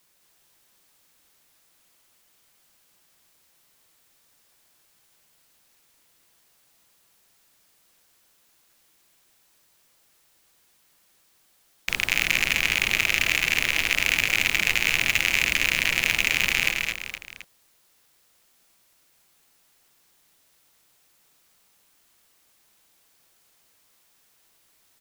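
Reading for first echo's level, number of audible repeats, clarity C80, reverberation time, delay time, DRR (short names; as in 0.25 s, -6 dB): -5.5 dB, 3, none, none, 0.212 s, none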